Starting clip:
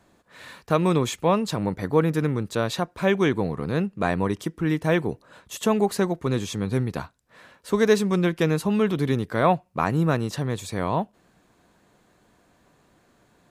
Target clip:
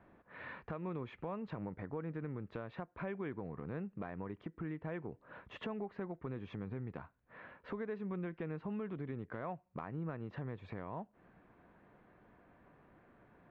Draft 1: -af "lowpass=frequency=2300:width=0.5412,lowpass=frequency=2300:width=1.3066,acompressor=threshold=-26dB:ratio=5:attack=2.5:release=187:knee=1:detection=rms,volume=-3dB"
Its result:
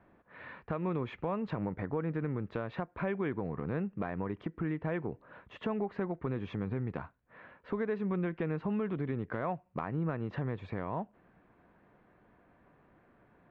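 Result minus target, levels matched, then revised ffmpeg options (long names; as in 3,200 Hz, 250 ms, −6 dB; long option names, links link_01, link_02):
downward compressor: peak gain reduction −7.5 dB
-af "lowpass=frequency=2300:width=0.5412,lowpass=frequency=2300:width=1.3066,acompressor=threshold=-35.5dB:ratio=5:attack=2.5:release=187:knee=1:detection=rms,volume=-3dB"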